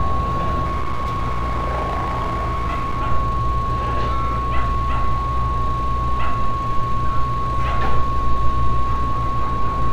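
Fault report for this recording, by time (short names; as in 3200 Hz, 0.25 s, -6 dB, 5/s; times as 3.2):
tone 1100 Hz -22 dBFS
0.64–3.01 clipped -18 dBFS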